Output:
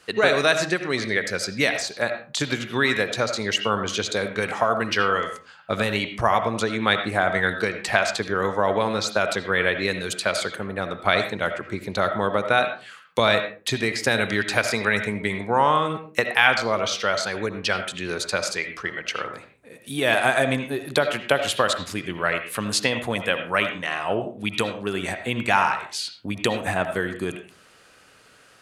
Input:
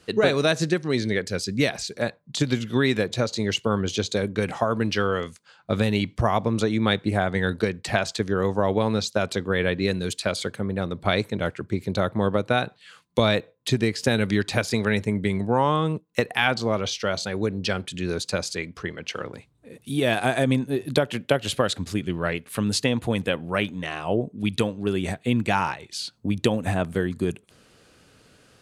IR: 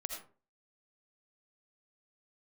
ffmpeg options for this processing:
-filter_complex "[0:a]tiltshelf=f=640:g=-8.5,bandreject=f=81.04:t=h:w=4,bandreject=f=162.08:t=h:w=4,bandreject=f=243.12:t=h:w=4,bandreject=f=324.16:t=h:w=4,asplit=2[a][b];[1:a]atrim=start_sample=2205,afade=t=out:st=0.36:d=0.01,atrim=end_sample=16317,lowpass=2.4k[c];[b][c]afir=irnorm=-1:irlink=0,volume=2.5dB[d];[a][d]amix=inputs=2:normalize=0,volume=-4.5dB"

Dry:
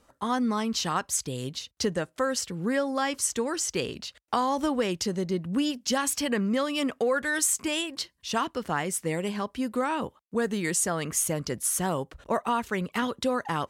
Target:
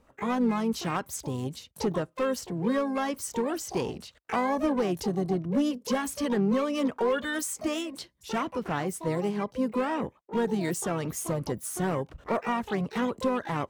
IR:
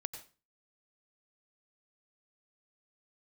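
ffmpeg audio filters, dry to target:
-filter_complex "[0:a]tiltshelf=f=1.2k:g=5.5,asoftclip=type=hard:threshold=-16.5dB,asplit=3[a][b][c];[b]asetrate=35002,aresample=44100,atempo=1.25992,volume=-16dB[d];[c]asetrate=88200,aresample=44100,atempo=0.5,volume=-9dB[e];[a][d][e]amix=inputs=3:normalize=0,volume=-4dB"

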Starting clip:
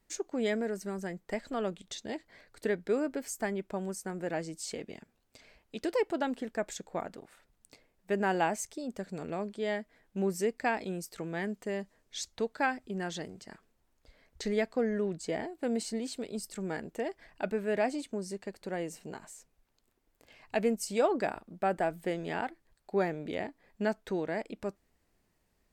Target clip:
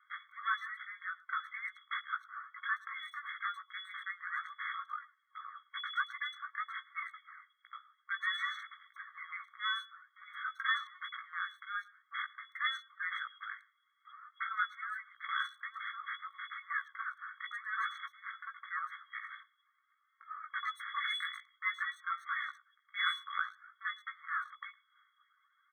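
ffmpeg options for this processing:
-filter_complex "[0:a]deesser=0.9,highpass=160,asplit=2[a][b];[b]acompressor=threshold=-40dB:ratio=6,volume=2dB[c];[a][c]amix=inputs=2:normalize=0,aphaser=in_gain=1:out_gain=1:delay=3.9:decay=0.57:speed=0.52:type=sinusoidal,aexciter=amount=14.5:drive=3.5:freq=2.6k,asoftclip=type=hard:threshold=-17.5dB,asplit=2[d][e];[e]adelay=17,volume=-4.5dB[f];[d][f]amix=inputs=2:normalize=0,lowpass=f=2.9k:t=q:w=0.5098,lowpass=f=2.9k:t=q:w=0.6013,lowpass=f=2.9k:t=q:w=0.9,lowpass=f=2.9k:t=q:w=2.563,afreqshift=-3400,asplit=2[g][h];[h]adelay=110,highpass=300,lowpass=3.4k,asoftclip=type=hard:threshold=-22dB,volume=-22dB[i];[g][i]amix=inputs=2:normalize=0,afftfilt=real='re*eq(mod(floor(b*sr/1024/1100),2),1)':imag='im*eq(mod(floor(b*sr/1024/1100),2),1)':win_size=1024:overlap=0.75"

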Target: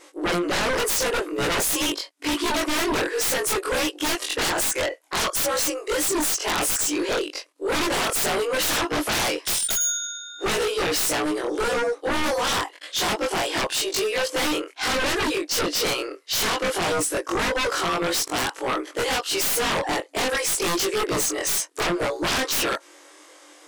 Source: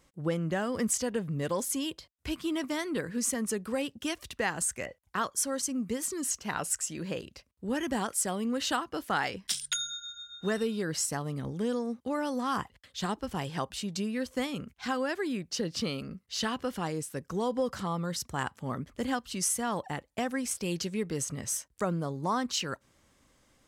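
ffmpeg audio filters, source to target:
-af "afftfilt=real='re':imag='-im':win_size=2048:overlap=0.75,afftfilt=real='re*between(b*sr/4096,280,12000)':imag='im*between(b*sr/4096,280,12000)':win_size=4096:overlap=0.75,aeval=exprs='0.1*(cos(1*acos(clip(val(0)/0.1,-1,1)))-cos(1*PI/2))+0.00355*(cos(8*acos(clip(val(0)/0.1,-1,1)))-cos(8*PI/2))':c=same,aeval=exprs='0.1*sin(PI/2*8.91*val(0)/0.1)':c=same"

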